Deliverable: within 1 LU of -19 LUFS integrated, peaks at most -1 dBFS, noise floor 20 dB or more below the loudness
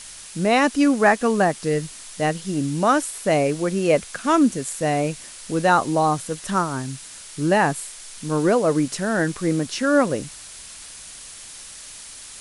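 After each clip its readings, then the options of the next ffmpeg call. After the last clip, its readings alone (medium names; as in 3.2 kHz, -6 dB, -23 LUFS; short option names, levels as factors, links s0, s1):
noise floor -40 dBFS; noise floor target -41 dBFS; loudness -21.0 LUFS; peak level -4.5 dBFS; loudness target -19.0 LUFS
-> -af "afftdn=nr=6:nf=-40"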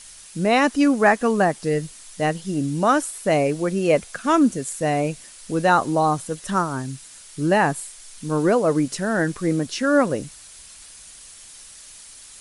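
noise floor -44 dBFS; loudness -21.0 LUFS; peak level -4.5 dBFS; loudness target -19.0 LUFS
-> -af "volume=1.26"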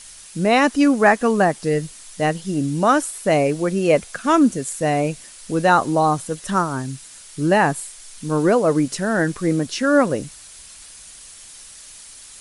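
loudness -19.0 LUFS; peak level -2.5 dBFS; noise floor -42 dBFS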